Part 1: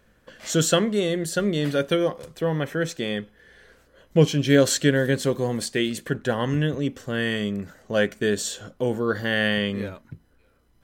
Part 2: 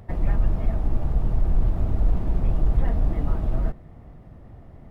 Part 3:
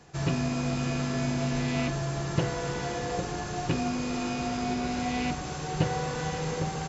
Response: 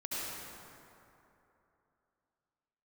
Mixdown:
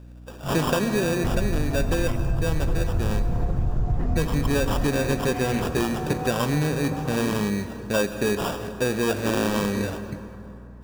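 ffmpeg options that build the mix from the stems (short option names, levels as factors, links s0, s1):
-filter_complex "[0:a]acrusher=samples=21:mix=1:aa=0.000001,asoftclip=type=tanh:threshold=0.224,volume=1.33,asplit=2[s0][s1];[s1]volume=0.211[s2];[1:a]equalizer=f=110:t=o:w=1.3:g=9.5,adelay=1150,volume=0.891,asplit=2[s3][s4];[s4]volume=0.224[s5];[2:a]afwtdn=0.0178,adelay=300,volume=1.06[s6];[3:a]atrim=start_sample=2205[s7];[s2][s5]amix=inputs=2:normalize=0[s8];[s8][s7]afir=irnorm=-1:irlink=0[s9];[s0][s3][s6][s9]amix=inputs=4:normalize=0,aeval=exprs='val(0)+0.00794*(sin(2*PI*60*n/s)+sin(2*PI*2*60*n/s)/2+sin(2*PI*3*60*n/s)/3+sin(2*PI*4*60*n/s)/4+sin(2*PI*5*60*n/s)/5)':c=same,acompressor=threshold=0.112:ratio=6"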